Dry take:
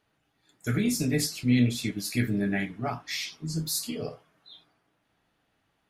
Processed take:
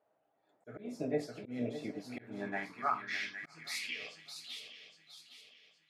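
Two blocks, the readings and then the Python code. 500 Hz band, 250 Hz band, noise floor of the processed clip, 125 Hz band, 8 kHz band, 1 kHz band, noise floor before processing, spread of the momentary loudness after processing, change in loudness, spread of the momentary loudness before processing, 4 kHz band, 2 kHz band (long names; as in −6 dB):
−5.0 dB, −14.5 dB, −77 dBFS, −21.0 dB, −18.0 dB, +1.0 dB, −74 dBFS, 18 LU, −11.0 dB, 11 LU, −9.5 dB, −5.0 dB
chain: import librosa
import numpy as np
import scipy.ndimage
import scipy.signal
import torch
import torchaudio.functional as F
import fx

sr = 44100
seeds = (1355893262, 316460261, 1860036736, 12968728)

y = fx.echo_swing(x, sr, ms=814, ratio=3, feedback_pct=37, wet_db=-11.0)
y = fx.auto_swell(y, sr, attack_ms=227.0)
y = fx.filter_sweep_bandpass(y, sr, from_hz=630.0, to_hz=3000.0, start_s=1.88, end_s=4.23, q=3.4)
y = F.gain(torch.from_numpy(y), 6.5).numpy()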